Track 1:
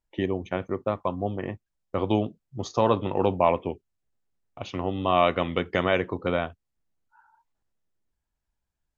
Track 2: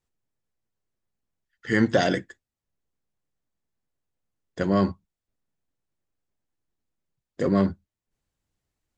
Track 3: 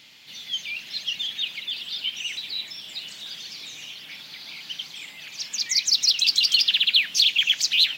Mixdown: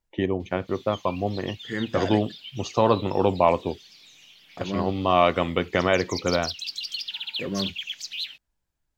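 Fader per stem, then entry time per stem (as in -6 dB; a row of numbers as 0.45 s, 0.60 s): +2.0 dB, -8.0 dB, -13.0 dB; 0.00 s, 0.00 s, 0.40 s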